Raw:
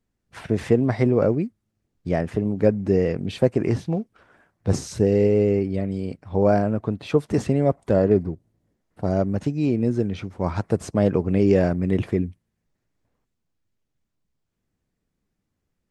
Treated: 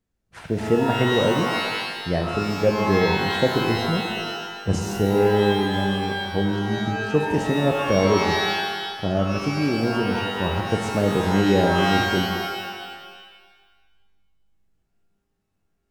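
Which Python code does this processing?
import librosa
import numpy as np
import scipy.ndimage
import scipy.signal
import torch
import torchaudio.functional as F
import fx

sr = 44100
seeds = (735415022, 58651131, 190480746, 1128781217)

y = fx.spec_erase(x, sr, start_s=6.42, length_s=0.69, low_hz=350.0, high_hz=4200.0)
y = fx.rev_shimmer(y, sr, seeds[0], rt60_s=1.4, semitones=12, shimmer_db=-2, drr_db=4.5)
y = F.gain(torch.from_numpy(y), -2.0).numpy()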